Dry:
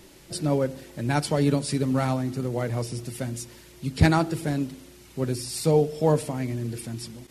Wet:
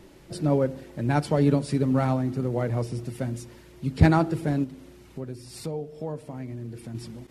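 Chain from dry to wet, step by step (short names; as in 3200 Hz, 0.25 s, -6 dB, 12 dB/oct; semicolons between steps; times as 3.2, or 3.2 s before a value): high shelf 2600 Hz -11.5 dB; 4.64–6.95 compressor 2.5:1, threshold -38 dBFS, peak gain reduction 14.5 dB; gain +1.5 dB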